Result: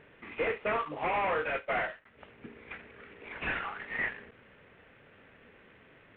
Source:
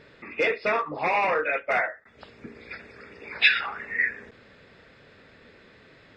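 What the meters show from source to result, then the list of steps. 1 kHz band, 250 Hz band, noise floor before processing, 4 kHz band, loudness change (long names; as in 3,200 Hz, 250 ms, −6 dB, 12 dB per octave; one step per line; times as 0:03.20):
−5.5 dB, −3.5 dB, −55 dBFS, −16.0 dB, −8.5 dB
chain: variable-slope delta modulation 16 kbit/s
level −5 dB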